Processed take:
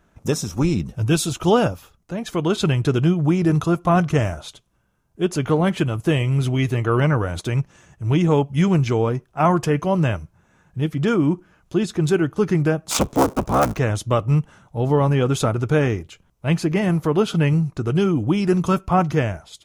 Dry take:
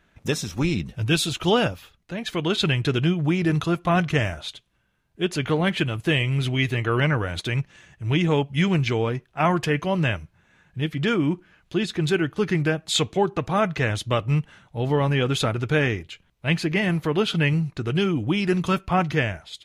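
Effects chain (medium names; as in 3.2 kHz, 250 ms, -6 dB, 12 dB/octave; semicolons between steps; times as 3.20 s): 12.89–13.79 s: cycle switcher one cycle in 3, inverted; high-order bell 2.7 kHz -9 dB; trim +4 dB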